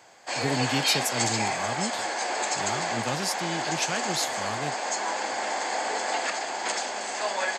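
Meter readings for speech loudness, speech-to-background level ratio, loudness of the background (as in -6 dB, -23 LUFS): -32.0 LUFS, -4.0 dB, -28.0 LUFS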